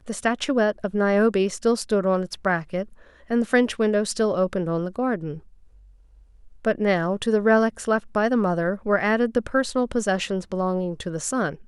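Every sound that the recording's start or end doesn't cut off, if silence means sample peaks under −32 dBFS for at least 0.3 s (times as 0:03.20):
0:03.30–0:05.38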